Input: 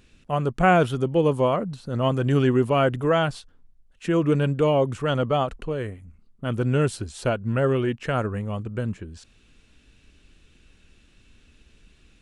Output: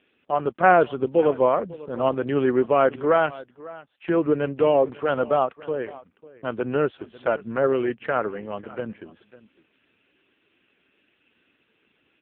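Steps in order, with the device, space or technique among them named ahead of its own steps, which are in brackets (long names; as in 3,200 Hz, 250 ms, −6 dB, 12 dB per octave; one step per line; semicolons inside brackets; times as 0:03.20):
satellite phone (band-pass filter 330–3,100 Hz; single-tap delay 548 ms −19.5 dB; level +3.5 dB; AMR narrowband 5.15 kbit/s 8,000 Hz)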